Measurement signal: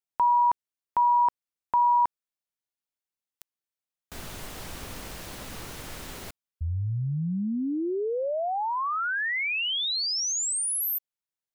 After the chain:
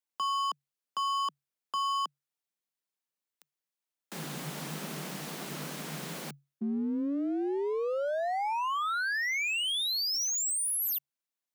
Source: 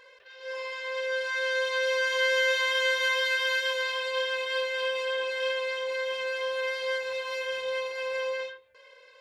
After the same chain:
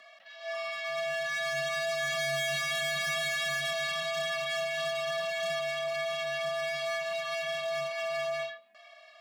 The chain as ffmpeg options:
-af "asoftclip=type=hard:threshold=0.0335,afreqshift=140"

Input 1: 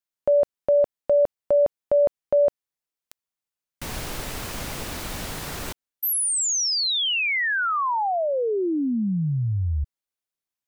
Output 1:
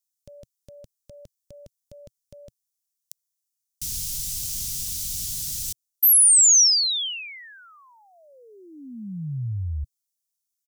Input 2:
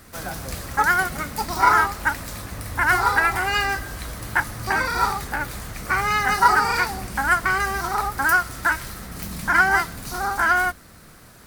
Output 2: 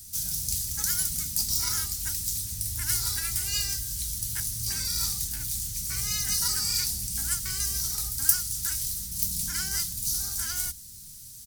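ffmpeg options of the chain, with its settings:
-af "firequalizer=gain_entry='entry(120,0);entry(340,-19);entry(760,-29);entry(3200,0);entry(5800,13)':delay=0.05:min_phase=1,volume=0.631"

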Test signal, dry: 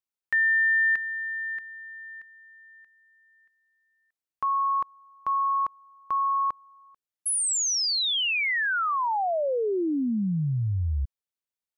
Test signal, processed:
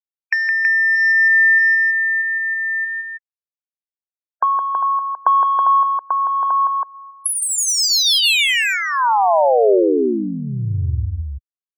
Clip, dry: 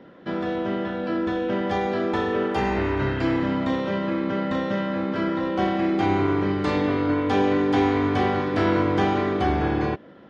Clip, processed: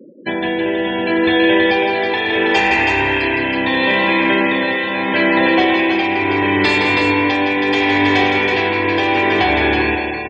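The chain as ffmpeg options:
-filter_complex "[0:a]afftfilt=real='re*gte(hypot(re,im),0.0126)':imag='im*gte(hypot(re,im),0.0126)':win_size=1024:overlap=0.75,highshelf=f=1700:t=q:w=3:g=9,aecho=1:1:1.2:0.55,acrossover=split=400[s0][s1];[s1]dynaudnorm=f=900:g=3:m=3.55[s2];[s0][s2]amix=inputs=2:normalize=0,asoftclip=type=tanh:threshold=0.299,acompressor=threshold=0.0501:ratio=8:attack=47:release=96:knee=6:detection=rms,equalizer=f=160:t=o:w=0.67:g=-8,equalizer=f=400:t=o:w=0.67:g=11,equalizer=f=1000:t=o:w=0.67:g=5,tremolo=f=0.74:d=0.45,afftdn=nr=35:nf=-43,highpass=66,aecho=1:1:164|324:0.501|0.596,volume=2.66"

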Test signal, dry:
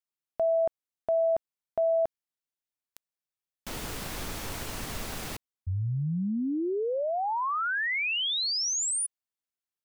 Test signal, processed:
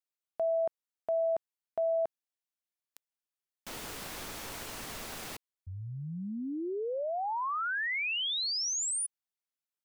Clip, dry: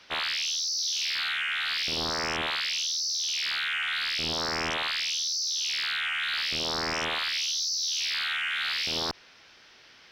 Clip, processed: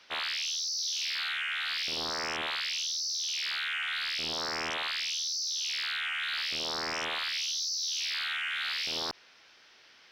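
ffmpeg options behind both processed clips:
-af "lowshelf=f=190:g=-10,volume=0.668"

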